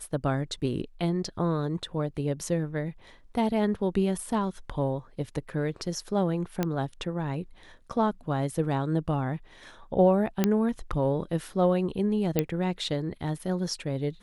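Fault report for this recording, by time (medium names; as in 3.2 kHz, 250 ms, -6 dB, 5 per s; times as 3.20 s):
6.63 s: pop -13 dBFS
10.44 s: pop -9 dBFS
12.39 s: pop -10 dBFS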